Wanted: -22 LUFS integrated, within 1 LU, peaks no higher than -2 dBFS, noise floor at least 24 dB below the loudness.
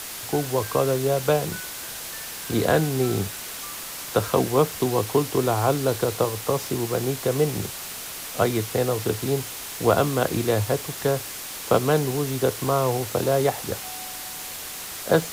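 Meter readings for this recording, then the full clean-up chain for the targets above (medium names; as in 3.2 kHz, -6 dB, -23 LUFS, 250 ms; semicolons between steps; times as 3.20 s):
noise floor -35 dBFS; noise floor target -49 dBFS; loudness -24.5 LUFS; peak level -6.0 dBFS; loudness target -22.0 LUFS
-> noise print and reduce 14 dB; trim +2.5 dB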